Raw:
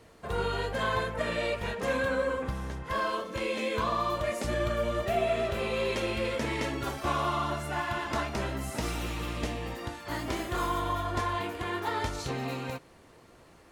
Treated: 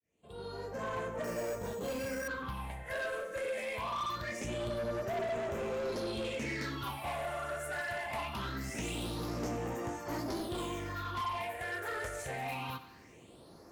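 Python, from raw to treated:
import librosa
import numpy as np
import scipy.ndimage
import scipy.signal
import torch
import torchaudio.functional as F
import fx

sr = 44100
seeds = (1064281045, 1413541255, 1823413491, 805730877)

p1 = fx.fade_in_head(x, sr, length_s=2.11)
p2 = fx.highpass(p1, sr, hz=180.0, slope=6)
p3 = fx.rider(p2, sr, range_db=5, speed_s=0.5)
p4 = p2 + (p3 * 10.0 ** (0.5 / 20.0))
p5 = fx.phaser_stages(p4, sr, stages=6, low_hz=250.0, high_hz=3700.0, hz=0.23, feedback_pct=45)
p6 = 10.0 ** (-27.0 / 20.0) * np.tanh(p5 / 10.0 ** (-27.0 / 20.0))
p7 = p6 + fx.echo_feedback(p6, sr, ms=94, feedback_pct=59, wet_db=-16.0, dry=0)
p8 = fx.resample_bad(p7, sr, factor=6, down='filtered', up='hold', at=(1.24, 2.28))
y = p8 * 10.0 ** (-5.5 / 20.0)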